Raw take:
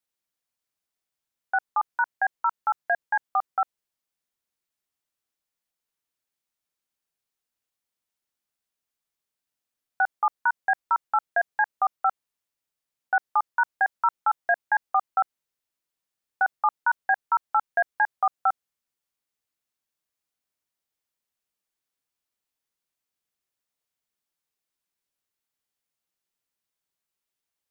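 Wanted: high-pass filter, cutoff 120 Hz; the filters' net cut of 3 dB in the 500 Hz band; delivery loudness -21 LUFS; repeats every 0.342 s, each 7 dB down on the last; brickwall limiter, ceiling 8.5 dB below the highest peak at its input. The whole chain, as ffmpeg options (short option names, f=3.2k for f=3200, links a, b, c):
-af "highpass=120,equalizer=f=500:t=o:g=-5.5,alimiter=limit=-22.5dB:level=0:latency=1,aecho=1:1:342|684|1026|1368|1710:0.447|0.201|0.0905|0.0407|0.0183,volume=13.5dB"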